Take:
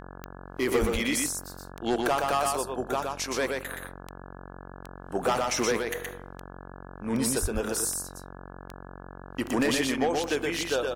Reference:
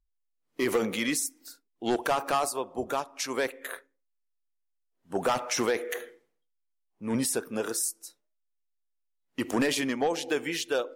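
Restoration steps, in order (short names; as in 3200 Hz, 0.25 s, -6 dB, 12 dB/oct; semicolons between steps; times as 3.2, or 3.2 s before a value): de-click; de-hum 46 Hz, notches 37; 0.8–0.92 HPF 140 Hz 24 dB/oct; 7.41–7.53 HPF 140 Hz 24 dB/oct; inverse comb 0.122 s -3.5 dB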